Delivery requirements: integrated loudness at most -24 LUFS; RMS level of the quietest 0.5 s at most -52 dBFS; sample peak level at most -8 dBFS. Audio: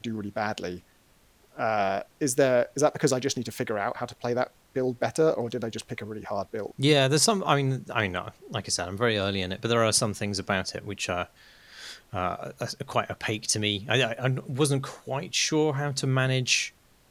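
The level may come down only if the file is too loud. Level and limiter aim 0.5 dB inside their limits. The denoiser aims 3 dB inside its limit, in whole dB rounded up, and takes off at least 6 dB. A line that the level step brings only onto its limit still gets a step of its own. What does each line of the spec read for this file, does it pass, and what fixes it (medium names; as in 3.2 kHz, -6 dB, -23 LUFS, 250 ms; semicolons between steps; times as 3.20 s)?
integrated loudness -27.0 LUFS: pass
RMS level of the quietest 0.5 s -61 dBFS: pass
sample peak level -6.5 dBFS: fail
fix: peak limiter -8.5 dBFS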